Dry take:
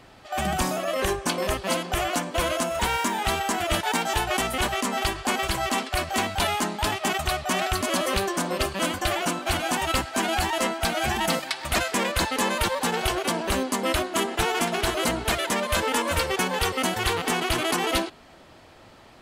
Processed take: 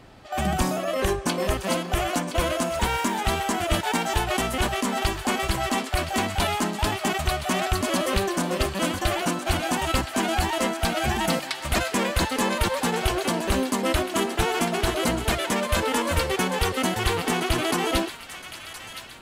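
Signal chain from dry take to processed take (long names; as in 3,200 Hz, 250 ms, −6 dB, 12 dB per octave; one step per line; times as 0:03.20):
low-shelf EQ 430 Hz +6 dB
on a send: delay with a high-pass on its return 1,018 ms, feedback 48%, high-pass 1,400 Hz, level −10 dB
on the sum: level −1.5 dB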